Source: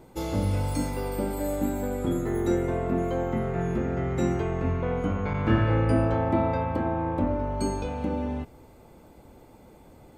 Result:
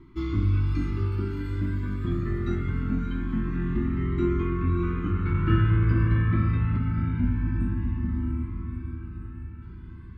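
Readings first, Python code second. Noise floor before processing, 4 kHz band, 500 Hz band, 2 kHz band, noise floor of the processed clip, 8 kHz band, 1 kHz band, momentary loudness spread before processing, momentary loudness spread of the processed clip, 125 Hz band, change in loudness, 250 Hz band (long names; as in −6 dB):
−52 dBFS, can't be measured, −8.0 dB, −0.5 dB, −41 dBFS, below −20 dB, −7.5 dB, 7 LU, 13 LU, +4.5 dB, +0.5 dB, −0.5 dB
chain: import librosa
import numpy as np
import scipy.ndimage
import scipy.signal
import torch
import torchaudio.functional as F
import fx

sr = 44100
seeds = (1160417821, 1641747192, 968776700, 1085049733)

p1 = scipy.signal.sosfilt(scipy.signal.cheby1(3, 1.0, [360.0, 1100.0], 'bandstop', fs=sr, output='sos'), x)
p2 = fx.spec_erase(p1, sr, start_s=6.79, length_s=2.83, low_hz=260.0, high_hz=7400.0)
p3 = fx.air_absorb(p2, sr, metres=300.0)
p4 = fx.echo_diffused(p3, sr, ms=617, feedback_pct=59, wet_db=-7.0)
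p5 = 10.0 ** (-25.5 / 20.0) * np.tanh(p4 / 10.0 ** (-25.5 / 20.0))
p6 = p4 + F.gain(torch.from_numpy(p5), -11.5).numpy()
p7 = fx.comb_cascade(p6, sr, direction='rising', hz=0.24)
y = F.gain(torch.from_numpy(p7), 5.0).numpy()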